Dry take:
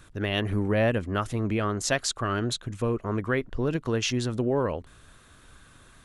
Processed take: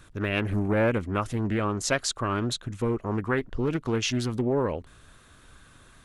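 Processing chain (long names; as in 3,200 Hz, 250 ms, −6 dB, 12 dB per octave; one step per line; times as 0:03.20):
highs frequency-modulated by the lows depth 0.34 ms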